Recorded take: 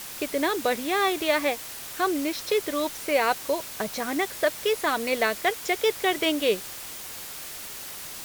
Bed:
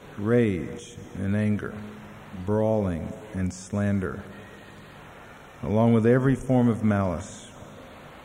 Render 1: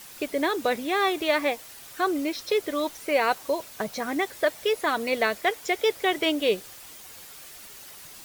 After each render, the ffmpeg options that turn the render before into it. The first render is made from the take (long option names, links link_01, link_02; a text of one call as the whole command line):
ffmpeg -i in.wav -af "afftdn=noise_reduction=8:noise_floor=-39" out.wav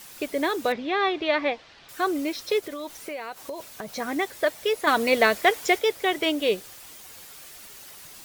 ffmpeg -i in.wav -filter_complex "[0:a]asettb=1/sr,asplit=3[link_01][link_02][link_03];[link_01]atrim=end=0.724[link_04];[link_02]atrim=start=0.72:end=1.89,asetpts=PTS-STARTPTS,afade=type=in:duration=0.004:curve=qsin,afade=type=out:start_time=1.166:duration=0.004:curve=qsin,lowpass=frequency=4400:width=0.5412,lowpass=frequency=4400:width=1.3066[link_05];[link_03]atrim=start=1.886[link_06];[link_04][link_05]acrossfade=duration=0.004:curve1=hsin:curve2=qsin[link_07];[link_07][link_06]acrossfade=duration=0.004:curve1=qsin:curve2=hsin,asplit=3[link_08][link_09][link_10];[link_08]afade=type=out:start_time=2.59:duration=0.02[link_11];[link_09]acompressor=threshold=-30dB:ratio=10:attack=3.2:release=140:knee=1:detection=peak,afade=type=in:start_time=2.59:duration=0.02,afade=type=out:start_time=3.92:duration=0.02[link_12];[link_10]afade=type=in:start_time=3.92:duration=0.02[link_13];[link_11][link_12][link_13]amix=inputs=3:normalize=0,asettb=1/sr,asplit=3[link_14][link_15][link_16];[link_14]atrim=end=4.874[link_17];[link_15]atrim=start=4.87:end=5.79,asetpts=PTS-STARTPTS,afade=type=in:duration=0.004:curve=qsin,afade=type=out:start_time=0.916:duration=0.004:curve=qsin,acontrast=30[link_18];[link_16]atrim=start=5.786[link_19];[link_17][link_18]acrossfade=duration=0.004:curve1=hsin:curve2=qsin[link_20];[link_20][link_19]acrossfade=duration=0.004:curve1=qsin:curve2=hsin" out.wav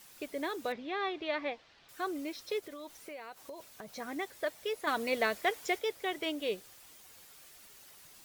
ffmpeg -i in.wav -af "volume=-11dB" out.wav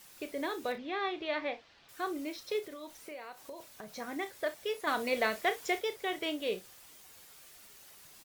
ffmpeg -i in.wav -af "aecho=1:1:33|59:0.282|0.133" out.wav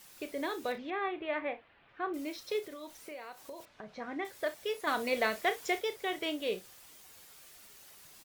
ffmpeg -i in.wav -filter_complex "[0:a]asettb=1/sr,asplit=3[link_01][link_02][link_03];[link_01]atrim=end=0.904[link_04];[link_02]atrim=start=0.9:end=2.14,asetpts=PTS-STARTPTS,afade=type=in:duration=0.004:curve=qsin,afade=type=out:start_time=1.236:duration=0.004:curve=qsin,lowpass=frequency=2700:width=0.5412,lowpass=frequency=2700:width=1.3066[link_05];[link_03]atrim=start=2.136[link_06];[link_04][link_05]acrossfade=duration=0.004:curve1=hsin:curve2=qsin[link_07];[link_07][link_06]acrossfade=duration=0.004:curve1=qsin:curve2=hsin,asettb=1/sr,asplit=3[link_08][link_09][link_10];[link_08]atrim=end=3.654[link_11];[link_09]atrim=start=3.65:end=4.25,asetpts=PTS-STARTPTS,afade=type=in:duration=0.004:curve=qsin,afade=type=out:start_time=0.596:duration=0.004:curve=qsin,lowpass=2900[link_12];[link_10]atrim=start=4.246[link_13];[link_11][link_12]acrossfade=duration=0.004:curve1=hsin:curve2=qsin[link_14];[link_14][link_13]acrossfade=duration=0.004:curve1=qsin:curve2=hsin" out.wav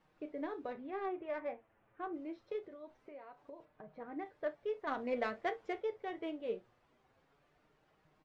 ffmpeg -i in.wav -af "adynamicsmooth=sensitivity=0.5:basefreq=1300,flanger=delay=6.4:depth=2.8:regen=44:speed=0.25:shape=sinusoidal" out.wav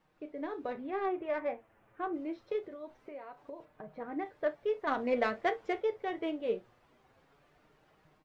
ffmpeg -i in.wav -af "dynaudnorm=framelen=370:gausssize=3:maxgain=6dB" out.wav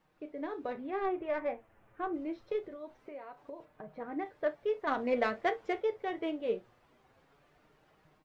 ffmpeg -i in.wav -filter_complex "[0:a]asettb=1/sr,asplit=3[link_01][link_02][link_03];[link_01]atrim=end=1.024[link_04];[link_02]atrim=start=1.02:end=2.77,asetpts=PTS-STARTPTS,afade=type=in:duration=0.004:curve=qsin,afade=type=out:start_time=1.746:duration=0.004:curve=qsin,lowshelf=frequency=63:gain=11[link_05];[link_03]atrim=start=2.766[link_06];[link_04][link_05]acrossfade=duration=0.004:curve1=hsin:curve2=qsin[link_07];[link_07][link_06]acrossfade=duration=0.004:curve1=qsin:curve2=hsin" out.wav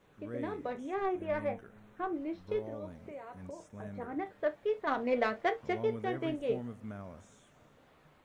ffmpeg -i in.wav -i bed.wav -filter_complex "[1:a]volume=-21dB[link_01];[0:a][link_01]amix=inputs=2:normalize=0" out.wav